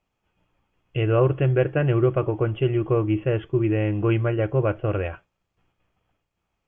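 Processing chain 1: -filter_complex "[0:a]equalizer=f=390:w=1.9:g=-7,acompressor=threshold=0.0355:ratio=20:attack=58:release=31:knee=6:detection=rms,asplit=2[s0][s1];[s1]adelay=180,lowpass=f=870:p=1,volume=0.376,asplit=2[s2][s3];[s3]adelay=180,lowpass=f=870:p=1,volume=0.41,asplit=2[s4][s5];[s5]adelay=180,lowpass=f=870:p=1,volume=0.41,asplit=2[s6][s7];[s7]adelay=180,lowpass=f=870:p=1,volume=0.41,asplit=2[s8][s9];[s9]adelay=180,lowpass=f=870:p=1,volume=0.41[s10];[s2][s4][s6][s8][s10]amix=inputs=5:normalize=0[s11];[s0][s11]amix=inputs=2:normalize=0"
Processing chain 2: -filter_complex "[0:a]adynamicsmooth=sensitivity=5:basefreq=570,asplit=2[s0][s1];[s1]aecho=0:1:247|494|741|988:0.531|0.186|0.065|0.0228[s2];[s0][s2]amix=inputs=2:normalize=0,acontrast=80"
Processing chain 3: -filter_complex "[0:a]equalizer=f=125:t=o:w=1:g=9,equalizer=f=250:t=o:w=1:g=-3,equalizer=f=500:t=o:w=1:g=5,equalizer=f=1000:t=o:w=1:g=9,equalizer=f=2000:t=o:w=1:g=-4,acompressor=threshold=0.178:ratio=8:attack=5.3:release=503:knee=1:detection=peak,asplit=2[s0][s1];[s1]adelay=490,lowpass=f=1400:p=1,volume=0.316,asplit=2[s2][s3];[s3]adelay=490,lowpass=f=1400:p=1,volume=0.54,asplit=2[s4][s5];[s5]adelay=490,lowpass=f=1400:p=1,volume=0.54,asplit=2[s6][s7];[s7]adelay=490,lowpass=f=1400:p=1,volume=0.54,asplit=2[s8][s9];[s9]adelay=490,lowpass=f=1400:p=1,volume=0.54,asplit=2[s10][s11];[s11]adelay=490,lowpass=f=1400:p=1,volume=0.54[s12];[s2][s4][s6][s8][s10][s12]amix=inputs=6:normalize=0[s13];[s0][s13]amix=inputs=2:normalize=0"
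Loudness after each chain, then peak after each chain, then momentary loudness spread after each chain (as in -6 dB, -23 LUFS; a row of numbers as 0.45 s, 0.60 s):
-29.5 LUFS, -15.5 LUFS, -22.0 LUFS; -15.5 dBFS, -4.0 dBFS, -8.0 dBFS; 4 LU, 8 LU, 13 LU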